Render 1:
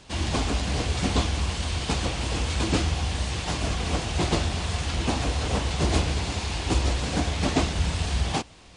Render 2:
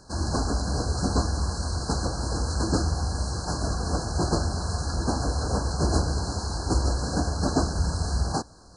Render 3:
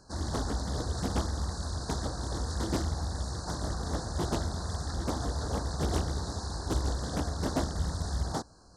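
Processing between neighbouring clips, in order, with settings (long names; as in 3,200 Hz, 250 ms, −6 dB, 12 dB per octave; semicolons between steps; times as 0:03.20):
brick-wall band-stop 1,700–4,000 Hz
highs frequency-modulated by the lows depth 0.97 ms; level −6 dB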